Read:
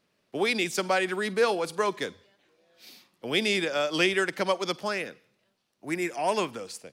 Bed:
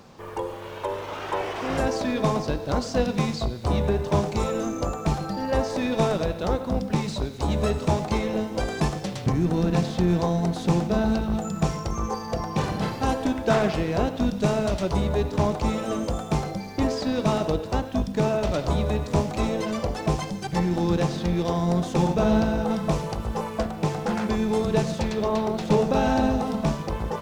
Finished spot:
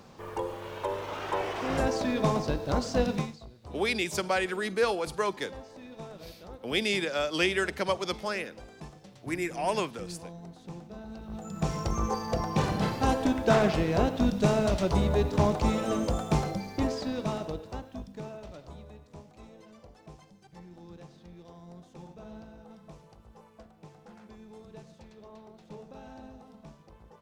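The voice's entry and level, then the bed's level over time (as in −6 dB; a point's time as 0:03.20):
3.40 s, −2.5 dB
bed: 0:03.15 −3 dB
0:03.39 −21 dB
0:11.08 −21 dB
0:11.81 −1.5 dB
0:16.48 −1.5 dB
0:19.07 −25.5 dB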